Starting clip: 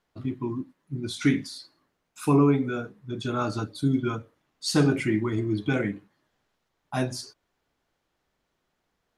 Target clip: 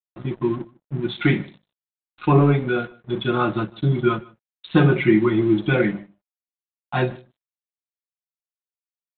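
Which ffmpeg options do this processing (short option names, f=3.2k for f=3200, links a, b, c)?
-af "acontrast=61,bandreject=f=50:t=h:w=6,bandreject=f=100:t=h:w=6,bandreject=f=150:t=h:w=6,bandreject=f=200:t=h:w=6,aecho=1:1:5.6:0.86,aresample=8000,aeval=exprs='sgn(val(0))*max(abs(val(0))-0.0119,0)':c=same,aresample=44100,aecho=1:1:152:0.0631"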